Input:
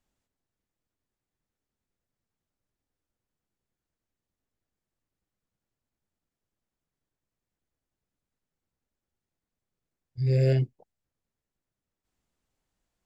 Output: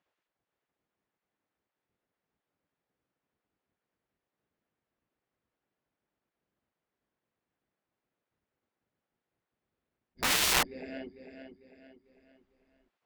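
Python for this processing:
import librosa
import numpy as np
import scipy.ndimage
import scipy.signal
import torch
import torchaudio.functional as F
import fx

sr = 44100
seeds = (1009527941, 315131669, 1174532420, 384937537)

p1 = scipy.signal.sosfilt(scipy.signal.butter(2, 2700.0, 'lowpass', fs=sr, output='sos'), x)
p2 = p1 + fx.echo_feedback(p1, sr, ms=448, feedback_pct=42, wet_db=-9.0, dry=0)
p3 = (np.mod(10.0 ** (21.5 / 20.0) * p2 + 1.0, 2.0) - 1.0) / 10.0 ** (21.5 / 20.0)
p4 = fx.spec_gate(p3, sr, threshold_db=-15, keep='weak')
p5 = fx.cheby_harmonics(p4, sr, harmonics=(3,), levels_db=(-21,), full_scale_db=-17.0)
p6 = 10.0 ** (-31.5 / 20.0) * np.tanh(p5 / 10.0 ** (-31.5 / 20.0))
p7 = p5 + (p6 * 10.0 ** (-5.0 / 20.0))
p8 = fx.attack_slew(p7, sr, db_per_s=550.0)
y = p8 * 10.0 ** (4.0 / 20.0)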